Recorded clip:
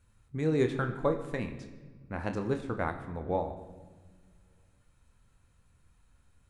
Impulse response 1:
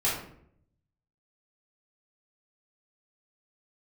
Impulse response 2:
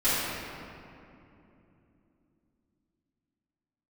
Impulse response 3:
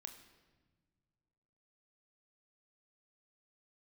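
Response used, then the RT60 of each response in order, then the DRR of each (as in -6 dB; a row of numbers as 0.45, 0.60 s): 3; 0.65 s, 2.9 s, not exponential; -7.5, -16.0, 5.5 dB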